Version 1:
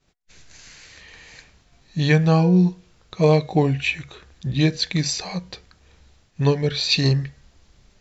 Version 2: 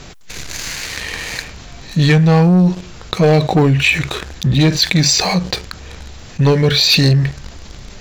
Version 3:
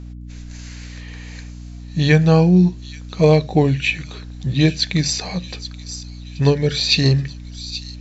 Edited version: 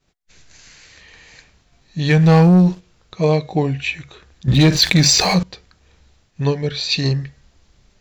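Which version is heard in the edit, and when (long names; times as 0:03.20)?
1
0:02.16–0:02.69: punch in from 2, crossfade 0.24 s
0:04.48–0:05.43: punch in from 2
not used: 3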